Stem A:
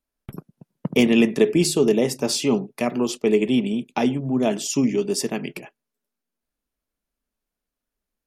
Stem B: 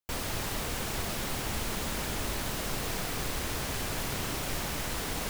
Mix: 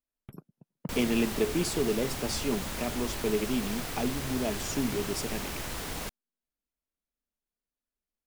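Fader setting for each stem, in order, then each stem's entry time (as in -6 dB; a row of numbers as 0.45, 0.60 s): -10.5, -2.5 dB; 0.00, 0.80 s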